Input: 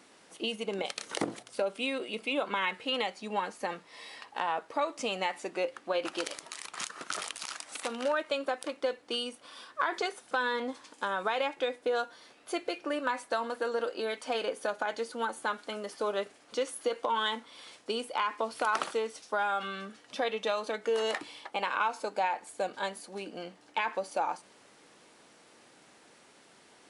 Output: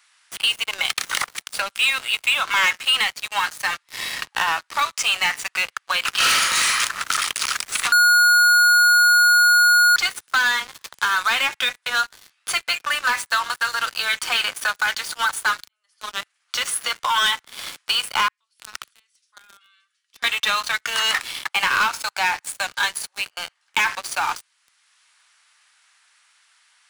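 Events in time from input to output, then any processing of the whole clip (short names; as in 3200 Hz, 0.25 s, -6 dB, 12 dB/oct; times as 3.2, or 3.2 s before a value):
6.16–6.67 reverb throw, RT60 1 s, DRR -11 dB
7.92–9.96 bleep 1440 Hz -10.5 dBFS
15.68–16.79 fade in
18.28–20.24 passive tone stack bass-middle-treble 6-0-2
whole clip: HPF 1200 Hz 24 dB/oct; sample leveller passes 5; three-band squash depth 40%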